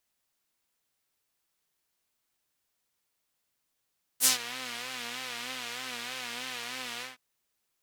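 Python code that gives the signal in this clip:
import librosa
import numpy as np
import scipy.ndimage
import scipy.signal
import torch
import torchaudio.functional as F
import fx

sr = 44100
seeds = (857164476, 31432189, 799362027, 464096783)

y = fx.sub_patch_vibrato(sr, seeds[0], note=59, wave='saw', wave2='saw', interval_st=0, detune_cents=16, level2_db=-9.0, sub_db=-10.0, noise_db=-4.0, kind='bandpass', cutoff_hz=2200.0, q=1.1, env_oct=2.5, env_decay_s=0.18, env_sustain_pct=15, attack_ms=54.0, decay_s=0.12, sustain_db=-18, release_s=0.16, note_s=2.81, lfo_hz=3.2, vibrato_cents=81)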